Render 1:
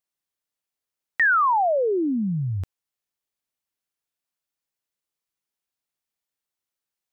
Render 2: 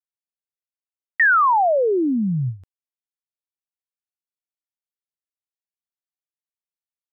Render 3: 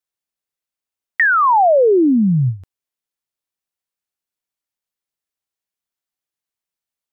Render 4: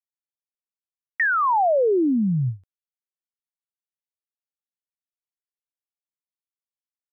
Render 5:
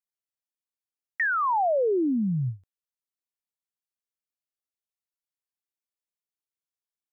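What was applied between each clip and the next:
gate with hold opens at -21 dBFS; gain +3.5 dB
dynamic EQ 1500 Hz, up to -6 dB, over -30 dBFS, Q 1; gain +7 dB
expander -20 dBFS; gain -7 dB
tone controls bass 0 dB, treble +3 dB; gain -4.5 dB

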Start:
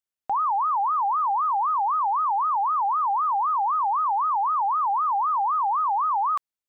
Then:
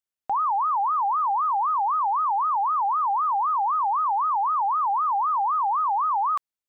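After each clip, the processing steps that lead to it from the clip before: nothing audible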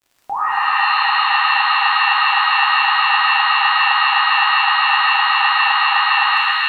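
crackle 63/s -40 dBFS; shimmer reverb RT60 2.4 s, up +7 st, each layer -2 dB, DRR -4 dB; gain -1 dB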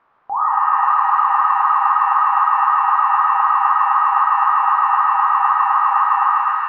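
added noise blue -39 dBFS; ladder low-pass 1300 Hz, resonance 55%; reverb RT60 0.65 s, pre-delay 88 ms, DRR 8.5 dB; gain +5 dB

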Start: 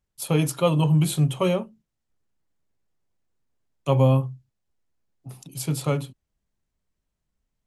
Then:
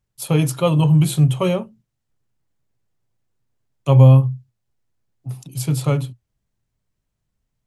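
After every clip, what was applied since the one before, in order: bell 120 Hz +11 dB 0.41 oct; gain +2.5 dB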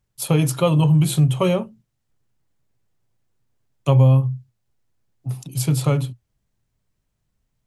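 compressor 2:1, threshold -18 dBFS, peak gain reduction 7.5 dB; gain +2.5 dB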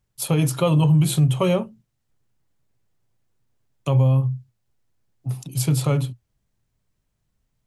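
limiter -10.5 dBFS, peak gain reduction 6 dB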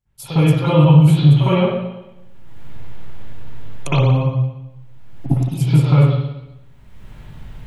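recorder AGC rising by 29 dB/s; reverb RT60 0.95 s, pre-delay 55 ms, DRR -15 dB; gain -9.5 dB

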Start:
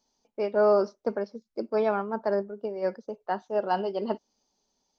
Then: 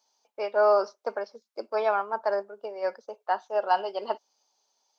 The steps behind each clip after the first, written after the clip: Chebyshev high-pass 770 Hz, order 2; bell 1900 Hz -3 dB 0.23 oct; gain +4.5 dB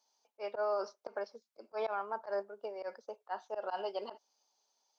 auto swell 0.106 s; limiter -21 dBFS, peak gain reduction 8.5 dB; gain -5 dB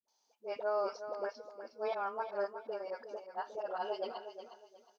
dispersion highs, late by 82 ms, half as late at 400 Hz; on a send: feedback echo 0.362 s, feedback 27%, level -10 dB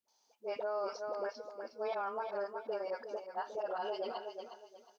limiter -32 dBFS, peak gain reduction 7.5 dB; gain +3 dB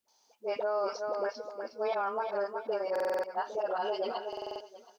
stuck buffer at 2.91/4.28, samples 2048, times 6; gain +5.5 dB

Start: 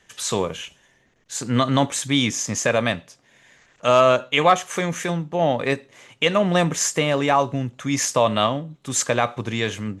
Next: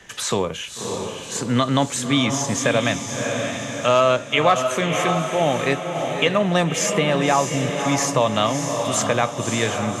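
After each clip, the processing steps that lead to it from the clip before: diffused feedback echo 0.596 s, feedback 47%, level -7 dB; three-band squash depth 40%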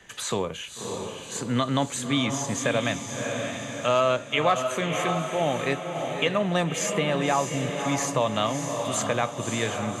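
notch 5400 Hz, Q 7.3; gain -5.5 dB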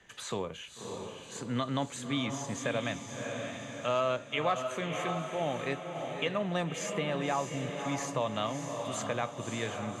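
high shelf 8700 Hz -9 dB; gain -7.5 dB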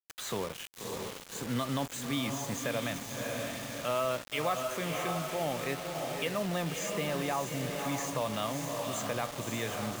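in parallel at -1 dB: limiter -27.5 dBFS, peak gain reduction 10 dB; on the sum: requantised 6-bit, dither none; gain -4.5 dB

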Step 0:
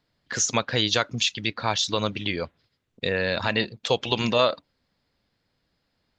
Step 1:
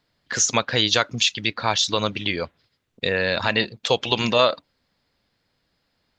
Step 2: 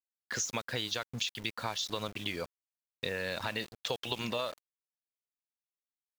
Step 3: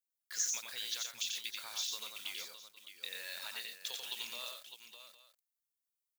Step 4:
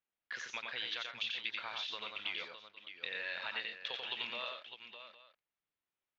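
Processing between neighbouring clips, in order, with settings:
low shelf 460 Hz -3.5 dB; gain +4 dB
compressor 8:1, threshold -22 dBFS, peak gain reduction 10.5 dB; sample gate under -36 dBFS; gain -8.5 dB
differentiator; on a send: tapped delay 89/120/610/810 ms -3.5/-10.5/-10/-18.5 dB; on the sum: gain +1 dB
inverse Chebyshev low-pass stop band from 11000 Hz, stop band 70 dB; gain +7 dB

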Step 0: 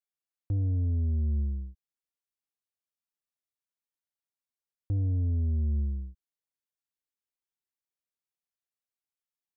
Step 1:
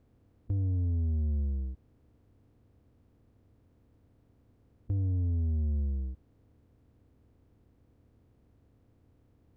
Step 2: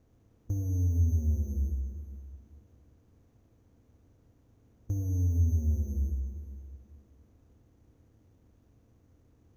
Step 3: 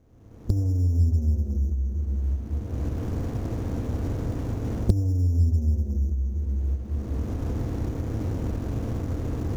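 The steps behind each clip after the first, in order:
per-bin compression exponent 0.4; gain -3 dB
sample-and-hold 7×; plate-style reverb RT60 2.5 s, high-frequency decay 0.85×, DRR 4 dB
median filter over 15 samples; recorder AGC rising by 35 dB/s; Doppler distortion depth 0.65 ms; gain +5 dB

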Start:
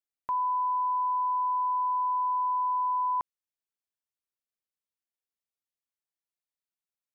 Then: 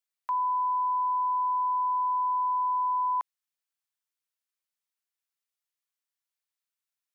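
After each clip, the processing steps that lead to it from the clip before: HPF 980 Hz; gain +3.5 dB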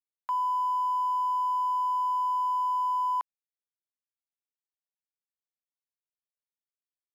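crossover distortion -51 dBFS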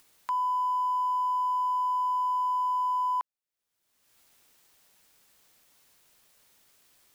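upward compressor, threshold -37 dBFS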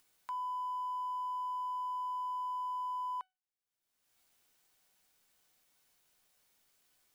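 resonator 750 Hz, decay 0.24 s, mix 70%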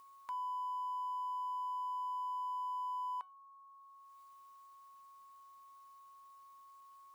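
whine 1100 Hz -54 dBFS; gain -2 dB

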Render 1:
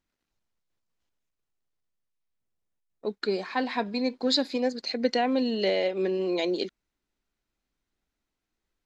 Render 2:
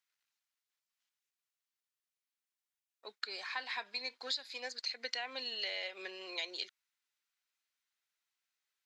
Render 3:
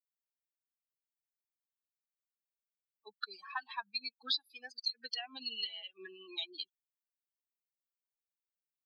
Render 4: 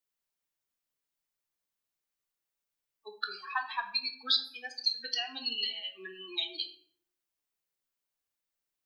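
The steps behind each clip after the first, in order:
HPF 1500 Hz 12 dB/oct; compressor 6:1, threshold -35 dBFS, peak gain reduction 14 dB
per-bin expansion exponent 3; fixed phaser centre 2100 Hz, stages 6; gain +8.5 dB
reverb RT60 0.55 s, pre-delay 7 ms, DRR 4.5 dB; gain +5.5 dB

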